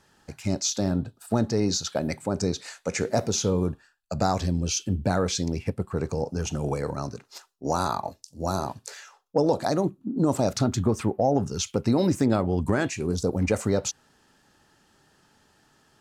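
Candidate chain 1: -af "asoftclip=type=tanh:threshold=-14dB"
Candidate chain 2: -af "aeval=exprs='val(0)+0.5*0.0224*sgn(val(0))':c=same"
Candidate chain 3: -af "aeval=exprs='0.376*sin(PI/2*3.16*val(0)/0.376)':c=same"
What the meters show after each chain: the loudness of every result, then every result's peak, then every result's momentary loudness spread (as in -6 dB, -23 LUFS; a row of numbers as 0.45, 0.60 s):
-27.5, -25.5, -16.0 LUFS; -14.5, -8.5, -8.5 dBFS; 10, 14, 8 LU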